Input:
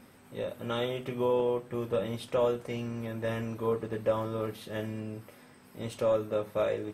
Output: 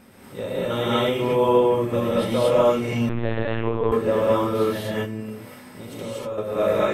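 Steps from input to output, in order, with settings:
0:04.80–0:06.38: downward compressor 5 to 1, threshold −40 dBFS, peak gain reduction 15 dB
reverb whose tail is shaped and stops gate 270 ms rising, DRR −7.5 dB
0:03.09–0:03.92: linear-prediction vocoder at 8 kHz pitch kept
level +3.5 dB

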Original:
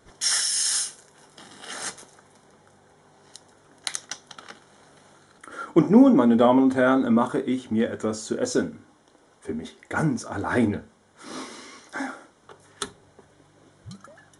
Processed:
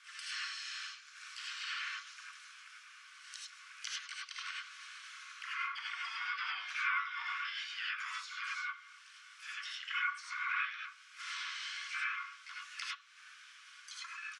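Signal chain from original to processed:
Chebyshev band-pass filter 1,400–7,300 Hz, order 5
pitch-shifted copies added −4 semitones −5 dB, +7 semitones −1 dB
downward compressor 2.5 to 1, threshold −46 dBFS, peak gain reduction 18 dB
treble cut that deepens with the level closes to 3,000 Hz, closed at −40.5 dBFS
high-frequency loss of the air 55 metres
reverb whose tail is shaped and stops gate 120 ms rising, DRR −3.5 dB
level +3 dB

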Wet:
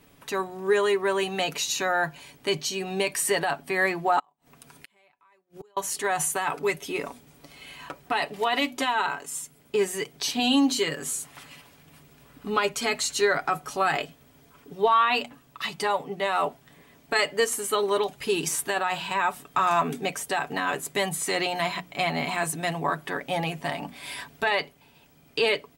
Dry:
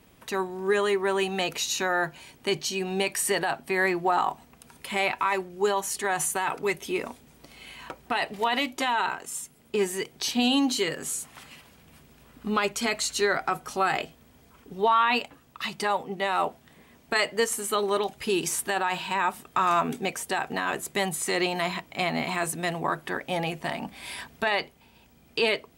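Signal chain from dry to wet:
mains-hum notches 60/120/180/240 Hz
0:04.19–0:05.77: gate with flip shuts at −28 dBFS, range −37 dB
comb filter 7 ms, depth 46%

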